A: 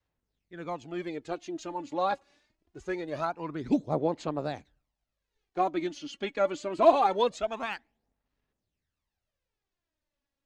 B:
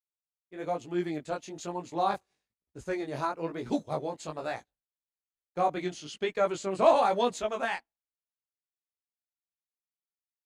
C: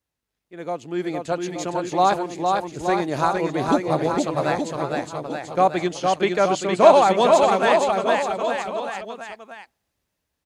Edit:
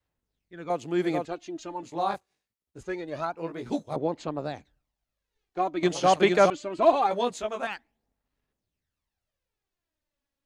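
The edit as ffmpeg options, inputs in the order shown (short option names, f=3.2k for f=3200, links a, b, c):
-filter_complex "[2:a]asplit=2[a][b];[1:a]asplit=3[c][d][e];[0:a]asplit=6[f][g][h][i][j][k];[f]atrim=end=0.702[l];[a]atrim=start=0.698:end=1.252[m];[g]atrim=start=1.248:end=1.832[n];[c]atrim=start=1.828:end=2.832[o];[h]atrim=start=2.828:end=3.372[p];[d]atrim=start=3.368:end=3.962[q];[i]atrim=start=3.958:end=5.832[r];[b]atrim=start=5.828:end=6.502[s];[j]atrim=start=6.498:end=7.112[t];[e]atrim=start=7.108:end=7.672[u];[k]atrim=start=7.668[v];[l][m]acrossfade=d=0.004:c1=hsin:c2=hsin[w];[w][n]acrossfade=d=0.004:c1=hsin:c2=hsin[x];[x][o]acrossfade=d=0.004:c1=hsin:c2=hsin[y];[y][p]acrossfade=d=0.004:c1=hsin:c2=hsin[z];[z][q]acrossfade=d=0.004:c1=hsin:c2=hsin[aa];[aa][r]acrossfade=d=0.004:c1=hsin:c2=hsin[ab];[ab][s]acrossfade=d=0.004:c1=hsin:c2=hsin[ac];[ac][t]acrossfade=d=0.004:c1=hsin:c2=hsin[ad];[ad][u]acrossfade=d=0.004:c1=hsin:c2=hsin[ae];[ae][v]acrossfade=d=0.004:c1=hsin:c2=hsin"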